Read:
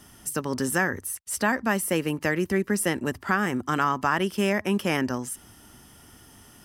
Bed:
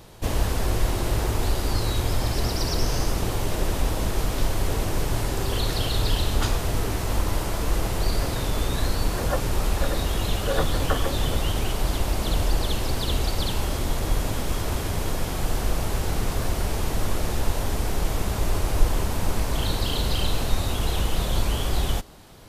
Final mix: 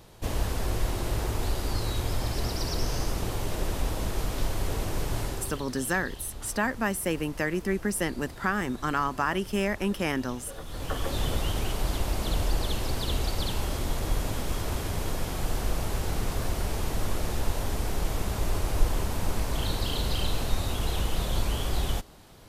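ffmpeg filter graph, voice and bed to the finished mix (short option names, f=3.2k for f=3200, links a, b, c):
-filter_complex "[0:a]adelay=5150,volume=-3.5dB[a];[1:a]volume=9.5dB,afade=t=out:st=5.23:d=0.42:silence=0.211349,afade=t=in:st=10.64:d=0.54:silence=0.188365[b];[a][b]amix=inputs=2:normalize=0"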